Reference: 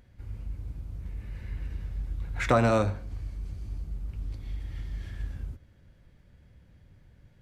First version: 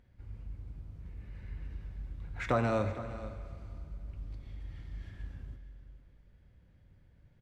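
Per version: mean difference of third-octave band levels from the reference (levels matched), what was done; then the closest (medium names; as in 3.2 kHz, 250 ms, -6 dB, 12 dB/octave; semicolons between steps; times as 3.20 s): 3.0 dB: treble shelf 6.4 kHz -11 dB; delay 461 ms -15 dB; Schroeder reverb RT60 2.7 s, combs from 33 ms, DRR 11 dB; trim -6.5 dB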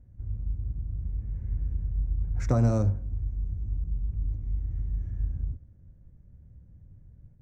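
8.5 dB: local Wiener filter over 9 samples; gate with hold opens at -50 dBFS; FFT filter 110 Hz 0 dB, 2.3 kHz -23 dB, 3.4 kHz -28 dB, 5.8 kHz -4 dB, 9.2 kHz -17 dB; trim +5.5 dB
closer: first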